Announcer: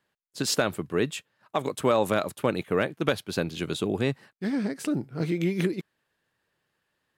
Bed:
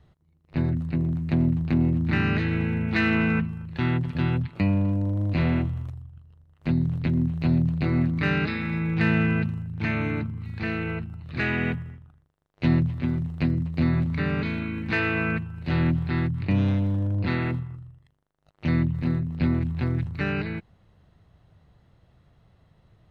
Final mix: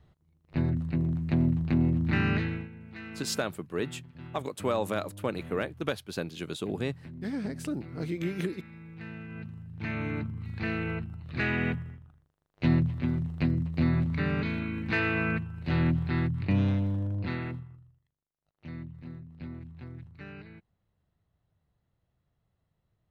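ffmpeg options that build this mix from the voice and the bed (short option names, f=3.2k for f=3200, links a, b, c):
-filter_complex "[0:a]adelay=2800,volume=-6dB[a];[1:a]volume=14.5dB,afade=t=out:st=2.36:d=0.33:silence=0.133352,afade=t=in:st=9.28:d=1.17:silence=0.133352,afade=t=out:st=16.6:d=1.45:silence=0.177828[b];[a][b]amix=inputs=2:normalize=0"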